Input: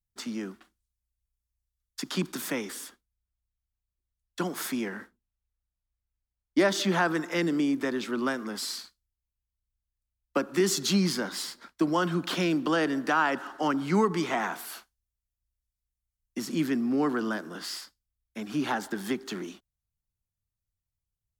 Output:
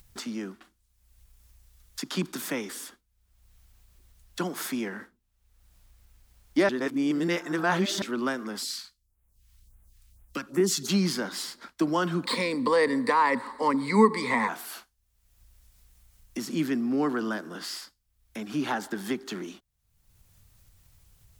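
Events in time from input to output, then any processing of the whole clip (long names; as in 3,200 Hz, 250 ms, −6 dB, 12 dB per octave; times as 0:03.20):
0:06.69–0:08.02: reverse
0:08.62–0:10.88: all-pass phaser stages 2, 1.1 Hz → 3.5 Hz, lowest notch 400–4,700 Hz
0:12.25–0:14.49: EQ curve with evenly spaced ripples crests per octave 0.96, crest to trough 18 dB
whole clip: upward compression, threshold −35 dBFS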